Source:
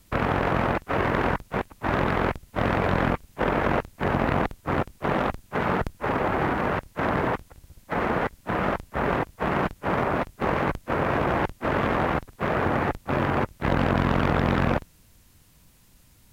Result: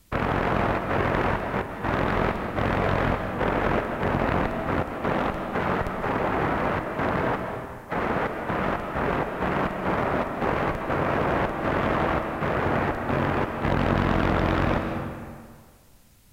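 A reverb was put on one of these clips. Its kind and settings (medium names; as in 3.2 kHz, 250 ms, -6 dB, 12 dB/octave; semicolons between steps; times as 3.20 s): algorithmic reverb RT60 1.8 s, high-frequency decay 0.75×, pre-delay 115 ms, DRR 5 dB; trim -1 dB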